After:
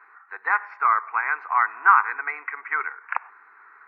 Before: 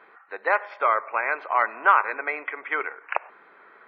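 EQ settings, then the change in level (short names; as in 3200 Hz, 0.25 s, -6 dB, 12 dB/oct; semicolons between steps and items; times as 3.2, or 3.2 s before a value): HPF 670 Hz 12 dB/oct; high shelf 2700 Hz -8 dB; fixed phaser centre 1400 Hz, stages 4; +5.0 dB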